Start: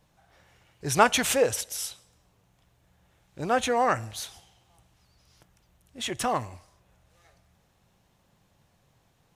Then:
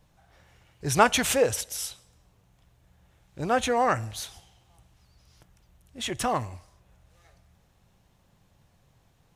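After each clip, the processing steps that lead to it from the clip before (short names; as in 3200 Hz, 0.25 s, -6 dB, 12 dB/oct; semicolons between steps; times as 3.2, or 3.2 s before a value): low shelf 100 Hz +8 dB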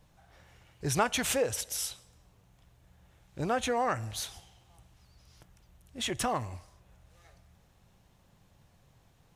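compressor 2:1, threshold -30 dBFS, peak gain reduction 9.5 dB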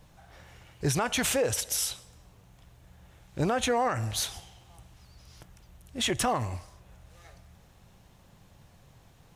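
limiter -24.5 dBFS, peak gain reduction 10.5 dB; gain +6.5 dB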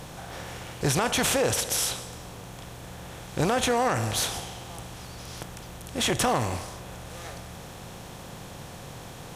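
per-bin compression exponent 0.6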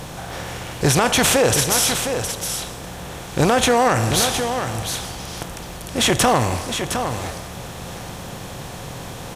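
echo 0.712 s -7.5 dB; gain +8 dB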